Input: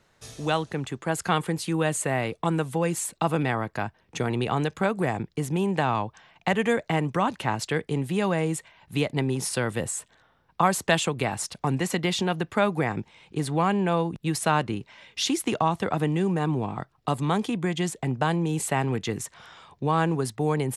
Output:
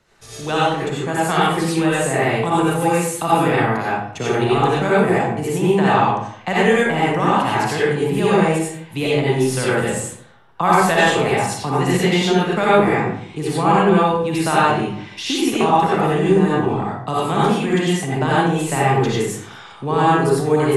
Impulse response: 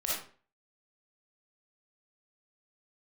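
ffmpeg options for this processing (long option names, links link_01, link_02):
-filter_complex "[0:a]asettb=1/sr,asplit=3[link_01][link_02][link_03];[link_01]atrim=end=2.304[link_04];[link_02]atrim=start=2.3:end=3.46,asetpts=PTS-STARTPTS,afade=type=in:duration=0.004:curve=qsin,afade=type=out:start_time=1.156:duration=0.004:curve=qsin,highshelf=frequency=8900:gain=11.5[link_05];[link_03]atrim=start=3.456[link_06];[link_04][link_05]acrossfade=duration=0.004:curve1=hsin:curve2=qsin[link_07];[link_07][link_06]acrossfade=duration=0.004:curve1=qsin:curve2=hsin,acrossover=split=290|3100[link_08][link_09][link_10];[link_10]alimiter=level_in=3dB:limit=-24dB:level=0:latency=1,volume=-3dB[link_11];[link_08][link_09][link_11]amix=inputs=3:normalize=0[link_12];[1:a]atrim=start_sample=2205,asetrate=27783,aresample=44100[link_13];[link_12][link_13]afir=irnorm=-1:irlink=0"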